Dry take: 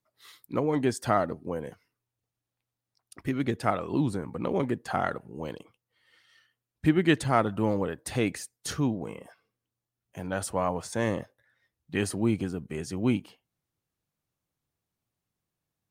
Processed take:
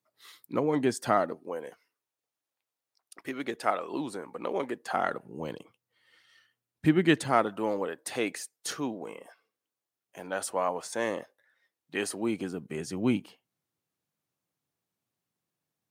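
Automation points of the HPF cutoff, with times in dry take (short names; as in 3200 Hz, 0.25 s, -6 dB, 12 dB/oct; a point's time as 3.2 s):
1.07 s 160 Hz
1.48 s 410 Hz
4.76 s 410 Hz
5.44 s 120 Hz
6.99 s 120 Hz
7.59 s 350 Hz
12.18 s 350 Hz
12.77 s 150 Hz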